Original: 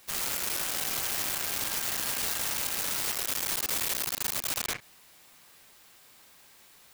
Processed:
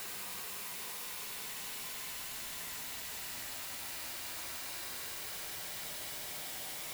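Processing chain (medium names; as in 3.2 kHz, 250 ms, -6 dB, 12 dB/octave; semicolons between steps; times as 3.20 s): Paulstretch 43×, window 0.10 s, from 4.99 s; de-hum 56.95 Hz, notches 28; trim +14 dB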